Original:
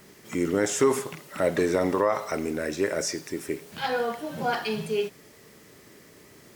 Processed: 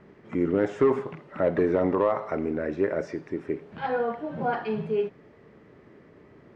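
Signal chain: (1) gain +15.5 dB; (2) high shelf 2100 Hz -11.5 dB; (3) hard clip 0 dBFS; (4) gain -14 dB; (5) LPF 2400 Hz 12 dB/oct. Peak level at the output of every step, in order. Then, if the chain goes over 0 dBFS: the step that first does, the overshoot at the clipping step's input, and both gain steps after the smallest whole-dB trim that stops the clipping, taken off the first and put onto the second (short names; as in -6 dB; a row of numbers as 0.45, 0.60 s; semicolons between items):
+4.0, +3.5, 0.0, -14.0, -13.5 dBFS; step 1, 3.5 dB; step 1 +11.5 dB, step 4 -10 dB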